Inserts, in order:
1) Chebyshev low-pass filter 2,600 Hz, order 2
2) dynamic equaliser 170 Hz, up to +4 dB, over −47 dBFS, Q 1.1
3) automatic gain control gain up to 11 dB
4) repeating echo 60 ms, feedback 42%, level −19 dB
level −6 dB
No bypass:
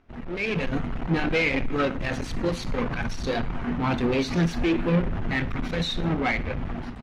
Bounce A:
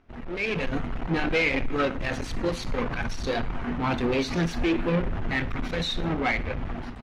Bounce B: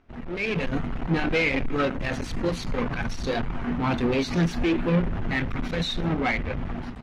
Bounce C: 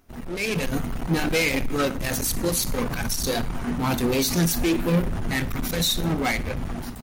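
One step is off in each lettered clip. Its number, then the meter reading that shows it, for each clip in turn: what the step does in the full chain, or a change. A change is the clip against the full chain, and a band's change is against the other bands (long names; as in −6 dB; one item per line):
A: 2, 125 Hz band −3.0 dB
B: 4, echo-to-direct ratio −18.0 dB to none audible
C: 1, 8 kHz band +17.0 dB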